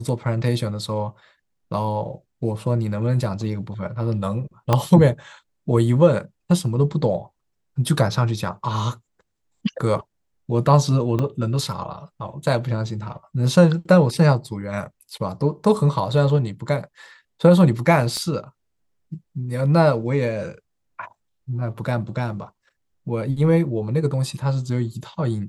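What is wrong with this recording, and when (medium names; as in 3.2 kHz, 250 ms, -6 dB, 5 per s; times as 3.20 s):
4.73 s: pop -5 dBFS
11.19 s: dropout 3.3 ms
18.17 s: pop -16 dBFS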